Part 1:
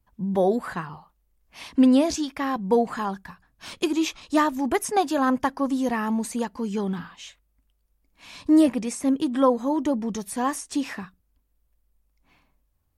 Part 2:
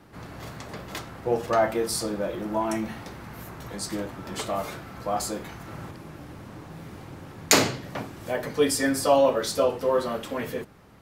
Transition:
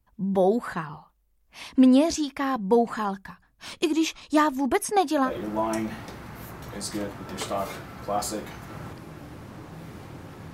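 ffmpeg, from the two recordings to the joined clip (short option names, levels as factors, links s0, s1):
-filter_complex "[0:a]asettb=1/sr,asplit=3[s0][s1][s2];[s0]atrim=end=4.604[s3];[s1]atrim=start=4.6:end=5.31,asetpts=PTS-STARTPTS,afade=t=in:d=0.004:c=qsin,afade=t=out:st=0.706:d=0.004:c=qsin,bandreject=f=7200:w=11[s4];[s2]atrim=start=5.306[s5];[s3][s4]acrossfade=d=0.004:c1=hsin:c2=qsin[s6];[s6][s5]acrossfade=d=0.004:c1=qsin:c2=hsin,apad=whole_dur=10.53,atrim=end=10.53,atrim=end=5.31,asetpts=PTS-STARTPTS[s7];[1:a]atrim=start=2.21:end=7.51,asetpts=PTS-STARTPTS[s8];[s7][s8]acrossfade=d=0.08:c1=tri:c2=tri"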